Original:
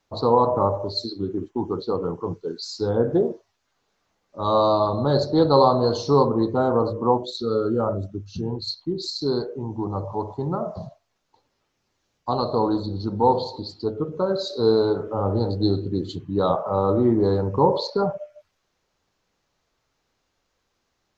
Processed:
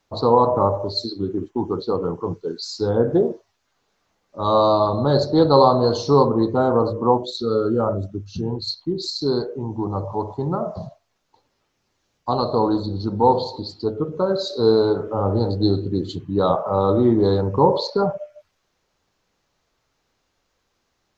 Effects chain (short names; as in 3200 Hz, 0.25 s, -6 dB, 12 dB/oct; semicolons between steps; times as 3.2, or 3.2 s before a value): 16.8–17.41 bell 3600 Hz +12.5 dB 0.27 oct; gain +2.5 dB